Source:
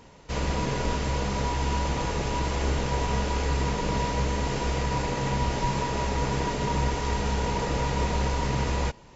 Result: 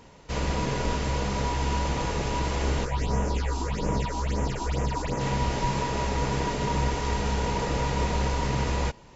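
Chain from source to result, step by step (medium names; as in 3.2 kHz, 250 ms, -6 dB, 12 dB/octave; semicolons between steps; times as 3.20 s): 2.84–5.19 s: phase shifter stages 6, 1 Hz -> 3.3 Hz, lowest notch 130–4200 Hz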